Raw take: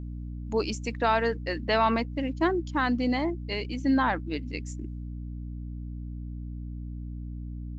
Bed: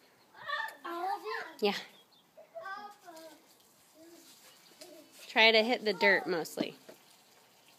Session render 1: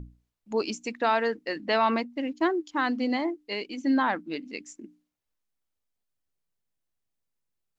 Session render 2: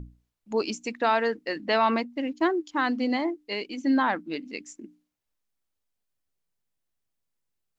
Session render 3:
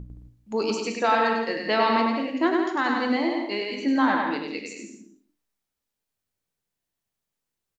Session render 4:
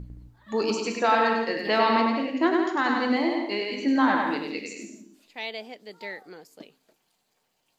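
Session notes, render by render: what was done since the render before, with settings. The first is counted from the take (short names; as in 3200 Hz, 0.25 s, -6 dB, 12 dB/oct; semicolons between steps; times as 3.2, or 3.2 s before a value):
notches 60/120/180/240/300 Hz
gain +1 dB
bouncing-ball echo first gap 0.1 s, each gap 0.7×, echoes 5; non-linear reverb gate 0.25 s falling, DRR 6 dB
add bed -11.5 dB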